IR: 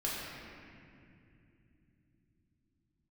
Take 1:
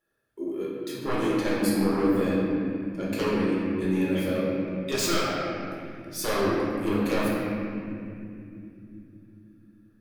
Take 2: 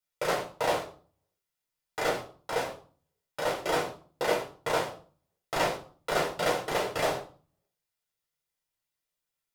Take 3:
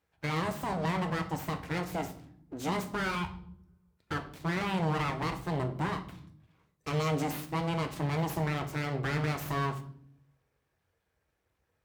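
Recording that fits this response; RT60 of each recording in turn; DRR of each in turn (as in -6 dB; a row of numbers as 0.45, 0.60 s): 1; not exponential, 0.45 s, not exponential; -7.0, -3.0, 6.0 dB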